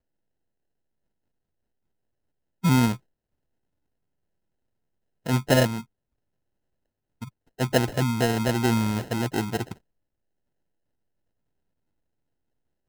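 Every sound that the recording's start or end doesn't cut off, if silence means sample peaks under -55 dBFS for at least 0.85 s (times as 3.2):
2.63–2.99
5.26–5.85
7.21–9.78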